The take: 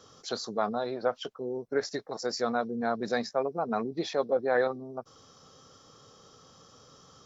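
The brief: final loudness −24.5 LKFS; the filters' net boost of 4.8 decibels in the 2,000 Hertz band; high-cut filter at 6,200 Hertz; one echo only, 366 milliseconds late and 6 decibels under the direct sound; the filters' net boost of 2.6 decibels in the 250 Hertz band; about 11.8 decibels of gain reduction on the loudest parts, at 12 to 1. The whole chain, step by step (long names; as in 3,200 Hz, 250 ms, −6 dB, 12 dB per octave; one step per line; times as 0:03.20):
low-pass filter 6,200 Hz
parametric band 250 Hz +3 dB
parametric band 2,000 Hz +6.5 dB
downward compressor 12 to 1, threshold −32 dBFS
single-tap delay 366 ms −6 dB
level +12.5 dB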